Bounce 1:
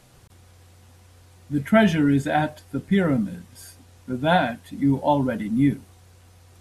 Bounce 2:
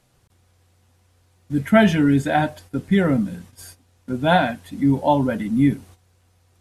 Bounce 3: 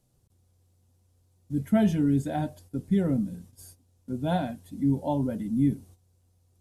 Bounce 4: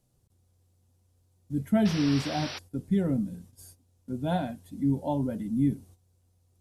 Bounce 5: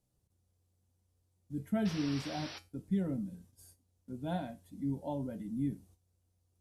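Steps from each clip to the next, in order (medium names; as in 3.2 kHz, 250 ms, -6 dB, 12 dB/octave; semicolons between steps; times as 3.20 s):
gate -45 dBFS, range -11 dB; trim +2.5 dB
peaking EQ 1.8 kHz -15 dB 2.6 oct; trim -5 dB
painted sound noise, 1.85–2.59 s, 230–5900 Hz -37 dBFS; trim -1.5 dB
feedback comb 63 Hz, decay 0.23 s, harmonics odd, mix 60%; trim -3 dB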